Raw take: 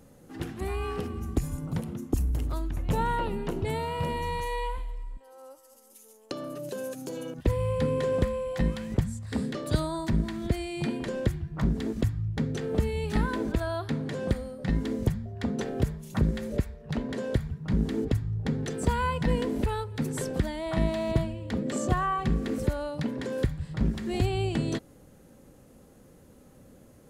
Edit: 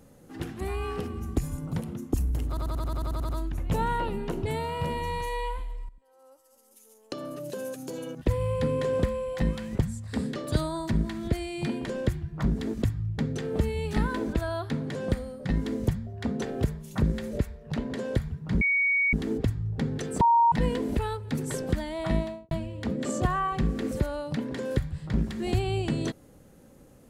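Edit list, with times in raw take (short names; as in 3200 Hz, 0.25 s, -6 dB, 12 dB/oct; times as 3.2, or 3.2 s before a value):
2.48 stutter 0.09 s, 10 plays
5.08–6.45 fade in, from -15 dB
17.8 add tone 2240 Hz -21 dBFS 0.52 s
18.88–19.19 bleep 933 Hz -16.5 dBFS
20.79–21.18 studio fade out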